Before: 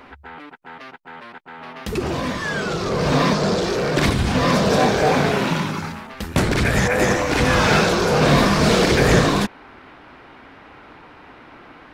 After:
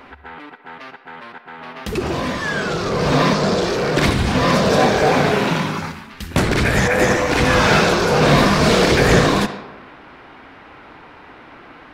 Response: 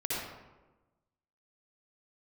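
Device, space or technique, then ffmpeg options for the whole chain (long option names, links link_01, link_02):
filtered reverb send: -filter_complex "[0:a]asettb=1/sr,asplit=3[link_01][link_02][link_03];[link_01]atrim=end=5.914[link_04];[link_02]atrim=start=5.91:end=6.31,asetpts=PTS-STARTPTS,afade=type=in:duration=0.004:curve=qsin,afade=type=out:start_time=0.396:duration=0.004:curve=qsin,equalizer=frequency=590:width=0.64:gain=-14[link_05];[link_03]atrim=start=6.306[link_06];[link_04][link_05]acrossfade=duration=0.004:curve1=hsin:curve2=qsin[link_07];[link_07][link_06]acrossfade=duration=0.004:curve1=qsin:curve2=hsin,asplit=2[link_08][link_09];[link_09]highpass=frequency=490:poles=1,lowpass=5900[link_10];[1:a]atrim=start_sample=2205[link_11];[link_10][link_11]afir=irnorm=-1:irlink=0,volume=-13.5dB[link_12];[link_08][link_12]amix=inputs=2:normalize=0,volume=1dB"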